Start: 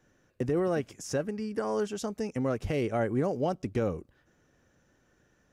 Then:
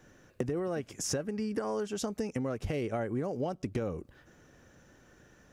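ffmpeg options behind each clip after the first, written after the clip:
ffmpeg -i in.wav -af "acompressor=threshold=-38dB:ratio=10,volume=8dB" out.wav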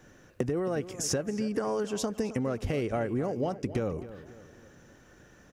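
ffmpeg -i in.wav -filter_complex "[0:a]asplit=2[link_01][link_02];[link_02]adelay=268,lowpass=frequency=3400:poles=1,volume=-14dB,asplit=2[link_03][link_04];[link_04]adelay=268,lowpass=frequency=3400:poles=1,volume=0.46,asplit=2[link_05][link_06];[link_06]adelay=268,lowpass=frequency=3400:poles=1,volume=0.46,asplit=2[link_07][link_08];[link_08]adelay=268,lowpass=frequency=3400:poles=1,volume=0.46[link_09];[link_01][link_03][link_05][link_07][link_09]amix=inputs=5:normalize=0,volume=3dB" out.wav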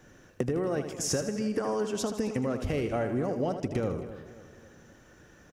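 ffmpeg -i in.wav -af "aecho=1:1:79|158|237|316|395:0.355|0.163|0.0751|0.0345|0.0159" out.wav

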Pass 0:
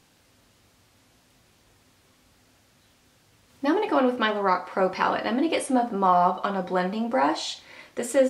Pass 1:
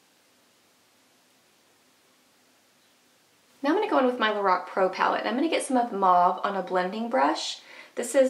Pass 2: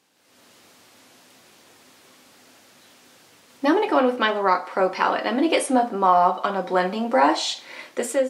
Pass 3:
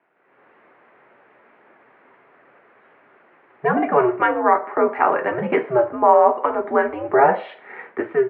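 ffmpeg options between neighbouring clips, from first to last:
ffmpeg -i in.wav -af "highpass=250" out.wav
ffmpeg -i in.wav -af "dynaudnorm=framelen=130:gausssize=5:maxgain=13.5dB,volume=-4dB" out.wav
ffmpeg -i in.wav -af "highpass=frequency=440:width_type=q:width=0.5412,highpass=frequency=440:width_type=q:width=1.307,lowpass=frequency=2200:width_type=q:width=0.5176,lowpass=frequency=2200:width_type=q:width=0.7071,lowpass=frequency=2200:width_type=q:width=1.932,afreqshift=-130,volume=4dB" out.wav

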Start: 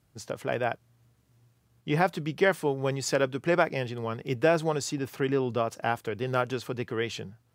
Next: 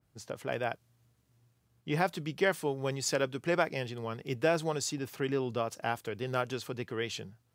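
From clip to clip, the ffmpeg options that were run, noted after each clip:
ffmpeg -i in.wav -af "adynamicequalizer=threshold=0.00891:dfrequency=2700:dqfactor=0.7:tfrequency=2700:tqfactor=0.7:attack=5:release=100:ratio=0.375:range=2.5:mode=boostabove:tftype=highshelf,volume=-5dB" out.wav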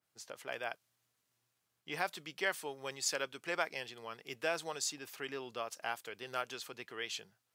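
ffmpeg -i in.wav -af "highpass=frequency=1300:poles=1,volume=-1dB" out.wav

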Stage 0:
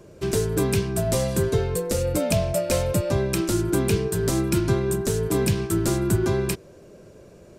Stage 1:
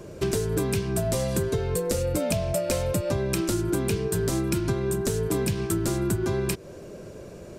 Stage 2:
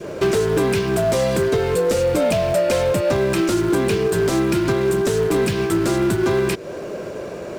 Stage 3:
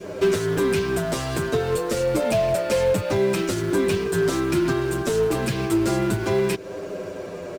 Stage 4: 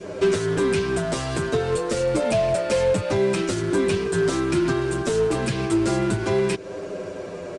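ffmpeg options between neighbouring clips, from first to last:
ffmpeg -i in.wav -af "acompressor=threshold=-29dB:ratio=6,volume=6dB" out.wav
ffmpeg -i in.wav -filter_complex "[0:a]adynamicequalizer=threshold=0.00708:dfrequency=940:dqfactor=0.97:tfrequency=940:tqfactor=0.97:attack=5:release=100:ratio=0.375:range=2:mode=cutabove:tftype=bell,acrusher=bits=5:mode=log:mix=0:aa=0.000001,asplit=2[link_01][link_02];[link_02]highpass=frequency=720:poles=1,volume=21dB,asoftclip=type=tanh:threshold=-9.5dB[link_03];[link_01][link_03]amix=inputs=2:normalize=0,lowpass=frequency=1700:poles=1,volume=-6dB,volume=3dB" out.wav
ffmpeg -i in.wav -filter_complex "[0:a]asplit=2[link_01][link_02];[link_02]adelay=7.6,afreqshift=-0.29[link_03];[link_01][link_03]amix=inputs=2:normalize=1" out.wav
ffmpeg -i in.wav -af "aresample=22050,aresample=44100" out.wav

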